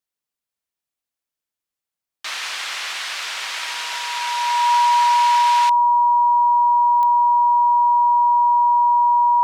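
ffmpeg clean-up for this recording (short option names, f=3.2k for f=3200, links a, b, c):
-af "adeclick=t=4,bandreject=f=960:w=30"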